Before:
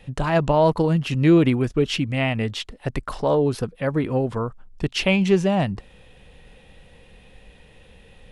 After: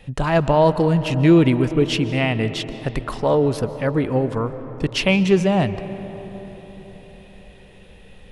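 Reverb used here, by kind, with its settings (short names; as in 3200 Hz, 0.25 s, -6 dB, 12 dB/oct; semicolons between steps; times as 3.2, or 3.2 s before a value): digital reverb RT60 4.7 s, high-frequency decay 0.35×, pre-delay 0.105 s, DRR 12 dB; gain +2 dB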